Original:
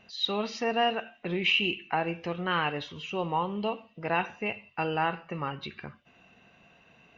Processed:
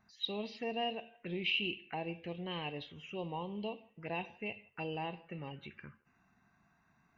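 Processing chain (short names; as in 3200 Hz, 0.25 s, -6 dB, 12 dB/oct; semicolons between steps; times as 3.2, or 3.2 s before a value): envelope phaser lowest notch 490 Hz, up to 1400 Hz, full sweep at -28.5 dBFS; band-limited delay 0.162 s, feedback 34%, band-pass 830 Hz, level -24 dB; gain -7.5 dB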